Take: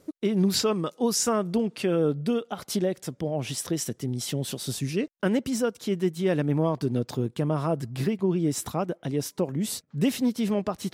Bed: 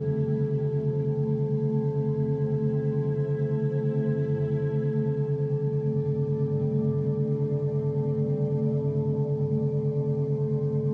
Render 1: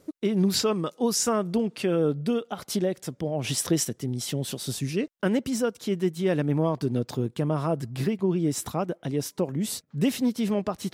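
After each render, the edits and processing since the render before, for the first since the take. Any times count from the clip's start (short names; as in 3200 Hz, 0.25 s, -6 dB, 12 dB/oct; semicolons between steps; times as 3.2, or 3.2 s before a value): 3.44–3.85 gain +4.5 dB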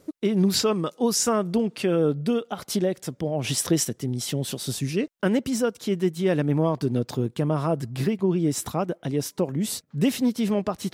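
gain +2 dB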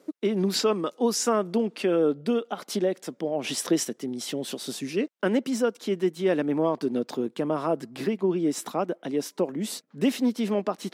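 HPF 220 Hz 24 dB/oct; high shelf 5700 Hz -7.5 dB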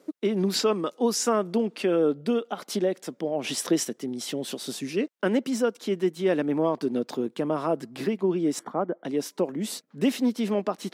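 8.59–9.05 polynomial smoothing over 41 samples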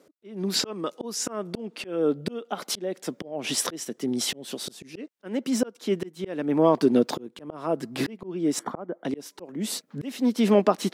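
AGC gain up to 7.5 dB; auto swell 0.509 s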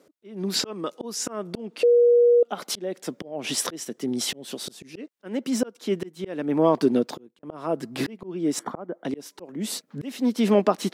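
1.83–2.43 bleep 479 Hz -13 dBFS; 6.87–7.43 fade out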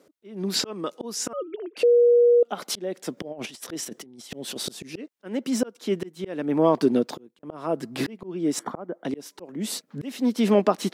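1.33–1.77 sine-wave speech; 3.17–4.97 negative-ratio compressor -35 dBFS, ratio -0.5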